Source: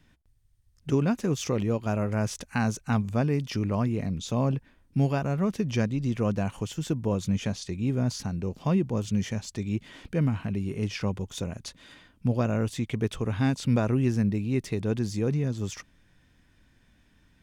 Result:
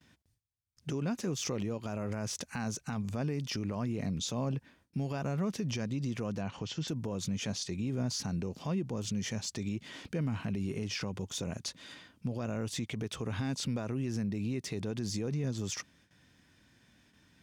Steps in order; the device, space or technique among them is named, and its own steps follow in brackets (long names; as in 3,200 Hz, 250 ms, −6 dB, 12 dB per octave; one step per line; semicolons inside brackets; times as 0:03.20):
broadcast voice chain (high-pass filter 100 Hz 12 dB per octave; de-essing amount 80%; downward compressor, threshold −26 dBFS, peak gain reduction 7.5 dB; parametric band 5,400 Hz +5 dB 1.1 octaves; brickwall limiter −26 dBFS, peak gain reduction 9.5 dB)
noise gate with hold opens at −55 dBFS
0:06.41–0:06.88: low-pass filter 5,400 Hz 24 dB per octave